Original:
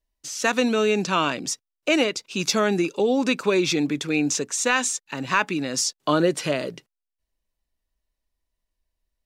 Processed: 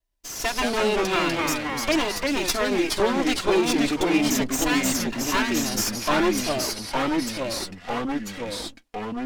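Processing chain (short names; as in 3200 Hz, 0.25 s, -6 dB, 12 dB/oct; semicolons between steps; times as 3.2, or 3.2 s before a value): minimum comb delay 2.9 ms; echoes that change speed 0.117 s, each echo -2 st, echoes 3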